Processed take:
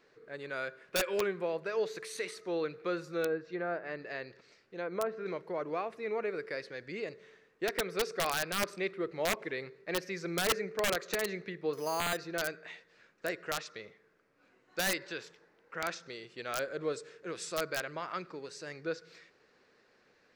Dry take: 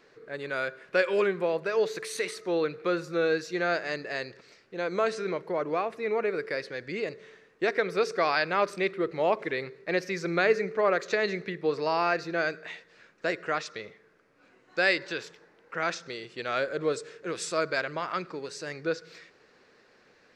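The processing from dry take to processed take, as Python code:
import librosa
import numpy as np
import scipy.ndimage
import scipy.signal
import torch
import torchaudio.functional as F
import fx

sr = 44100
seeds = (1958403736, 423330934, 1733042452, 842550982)

y = fx.env_lowpass_down(x, sr, base_hz=1300.0, full_db=-25.0, at=(3.25, 5.26))
y = fx.resample_bad(y, sr, factor=8, down='filtered', up='hold', at=(11.73, 12.17))
y = (np.mod(10.0 ** (16.0 / 20.0) * y + 1.0, 2.0) - 1.0) / 10.0 ** (16.0 / 20.0)
y = y * 10.0 ** (-6.5 / 20.0)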